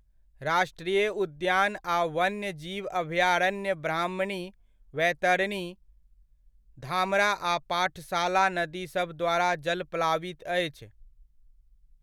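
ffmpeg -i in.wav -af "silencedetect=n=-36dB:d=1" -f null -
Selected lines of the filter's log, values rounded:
silence_start: 5.72
silence_end: 6.83 | silence_duration: 1.11
silence_start: 10.84
silence_end: 12.03 | silence_duration: 1.18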